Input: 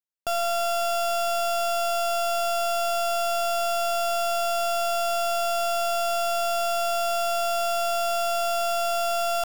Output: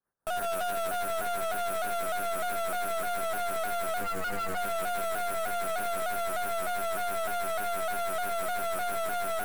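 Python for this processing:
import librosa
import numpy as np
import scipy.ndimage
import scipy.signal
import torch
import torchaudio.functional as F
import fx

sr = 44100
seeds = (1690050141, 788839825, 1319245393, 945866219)

p1 = fx.harmonic_tremolo(x, sr, hz=6.1, depth_pct=100, crossover_hz=2200.0)
p2 = fx.over_compress(p1, sr, threshold_db=-34.0, ratio=-0.5)
p3 = p1 + (p2 * librosa.db_to_amplitude(0.0))
p4 = p3 + 10.0 ** (-13.5 / 20.0) * np.pad(p3, (int(144 * sr / 1000.0), 0))[:len(p3)]
p5 = np.repeat(p4[::6], 6)[:len(p4)]
p6 = fx.tilt_shelf(p5, sr, db=6.0, hz=780.0, at=(4.01, 4.57))
p7 = 10.0 ** (-26.0 / 20.0) * (np.abs((p6 / 10.0 ** (-26.0 / 20.0) + 3.0) % 4.0 - 2.0) - 1.0)
p8 = scipy.signal.sosfilt(scipy.signal.ellip(3, 1.0, 40, [1600.0, 8200.0], 'bandstop', fs=sr, output='sos'), p7)
p9 = p8 + fx.echo_wet_lowpass(p8, sr, ms=246, feedback_pct=77, hz=1700.0, wet_db=-13, dry=0)
p10 = np.clip(p9, -10.0 ** (-33.5 / 20.0), 10.0 ** (-33.5 / 20.0))
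p11 = fx.vibrato_shape(p10, sr, shape='saw_down', rate_hz=3.3, depth_cents=100.0)
y = p11 * librosa.db_to_amplitude(4.0)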